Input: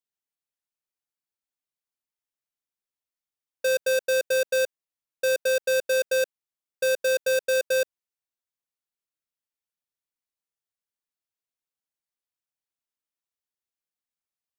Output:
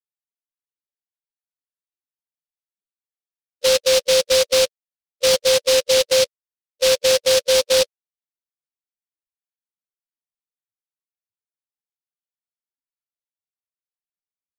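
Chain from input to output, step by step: loudest bins only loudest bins 4; delay time shaken by noise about 4 kHz, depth 0.17 ms; trim +8 dB

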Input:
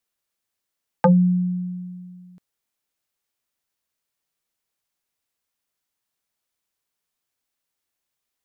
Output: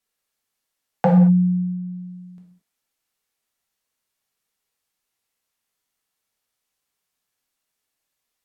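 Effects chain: low-pass that closes with the level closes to 640 Hz, closed at -23 dBFS; gated-style reverb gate 250 ms falling, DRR -1 dB

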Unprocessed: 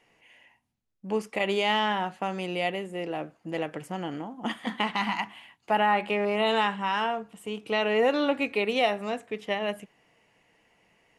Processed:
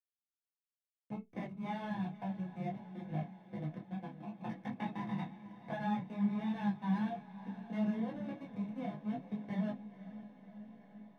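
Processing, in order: compression 8:1, threshold -40 dBFS, peak gain reduction 20.5 dB; two resonant band-passes 1.2 kHz, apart 0.89 oct; hysteresis with a dead band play -46.5 dBFS; echo that smears into a reverb 520 ms, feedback 67%, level -14 dB; reverberation RT60 0.15 s, pre-delay 3 ms, DRR -0.5 dB; detune thickener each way 22 cents; trim +4.5 dB

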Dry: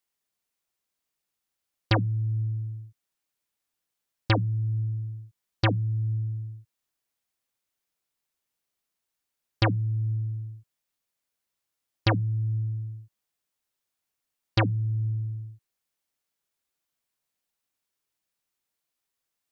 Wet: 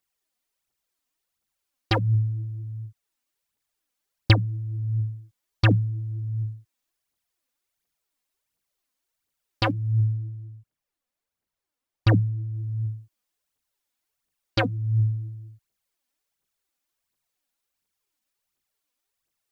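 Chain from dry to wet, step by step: 10.01–12.55 s: treble shelf 2 kHz -8 dB; phaser 1.4 Hz, delay 4.2 ms, feedback 60%

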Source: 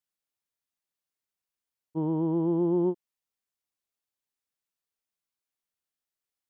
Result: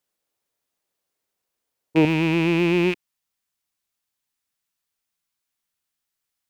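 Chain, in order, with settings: rattle on loud lows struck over -45 dBFS, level -25 dBFS; peaking EQ 480 Hz +7.5 dB 1.5 oct, from 2.05 s -5.5 dB; trim +8.5 dB

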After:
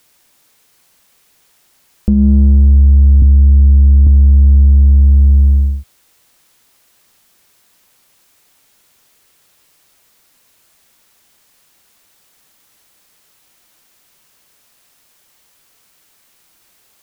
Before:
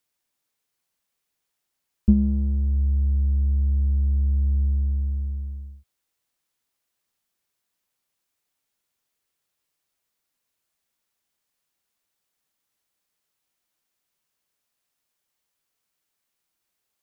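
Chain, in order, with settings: 3.22–4.07 s: steep low-pass 550 Hz 72 dB/octave; compression 16:1, threshold -29 dBFS, peak gain reduction 18.5 dB; loudness maximiser +26 dB; trim -1 dB

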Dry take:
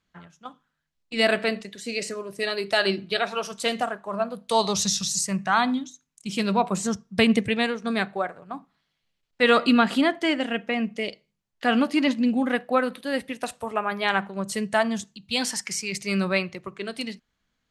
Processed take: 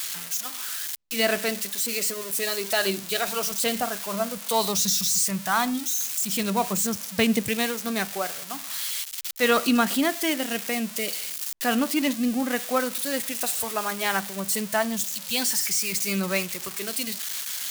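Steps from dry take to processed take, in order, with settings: zero-crossing glitches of -17.5 dBFS; 3.28–4.38 s: bass shelf 250 Hz +7 dB; trim -2.5 dB

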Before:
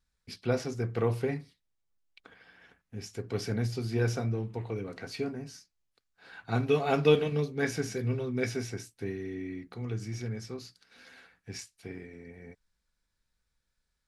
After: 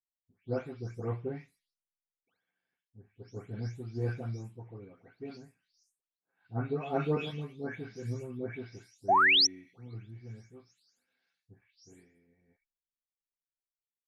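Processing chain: delay that grows with frequency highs late, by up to 366 ms; treble shelf 3.3 kHz -10.5 dB; painted sound rise, 9.08–9.47 s, 610–6100 Hz -21 dBFS; three bands expanded up and down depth 70%; trim -7.5 dB

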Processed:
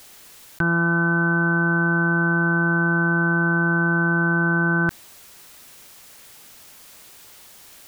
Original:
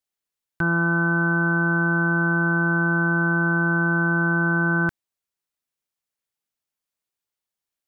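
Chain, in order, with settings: level flattener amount 100%; trim +1 dB

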